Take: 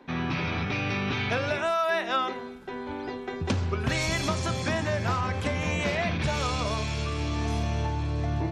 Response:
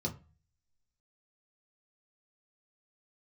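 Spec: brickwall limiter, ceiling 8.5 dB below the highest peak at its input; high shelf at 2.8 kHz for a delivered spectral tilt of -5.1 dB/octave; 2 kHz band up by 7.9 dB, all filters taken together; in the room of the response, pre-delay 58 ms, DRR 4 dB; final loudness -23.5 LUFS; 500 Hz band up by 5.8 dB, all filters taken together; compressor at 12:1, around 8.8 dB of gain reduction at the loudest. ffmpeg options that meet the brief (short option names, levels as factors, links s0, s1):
-filter_complex "[0:a]equalizer=f=500:t=o:g=7,equalizer=f=2000:t=o:g=7.5,highshelf=f=2800:g=4.5,acompressor=threshold=0.0501:ratio=12,alimiter=limit=0.075:level=0:latency=1,asplit=2[s0][s1];[1:a]atrim=start_sample=2205,adelay=58[s2];[s1][s2]afir=irnorm=-1:irlink=0,volume=0.473[s3];[s0][s3]amix=inputs=2:normalize=0,volume=1.58"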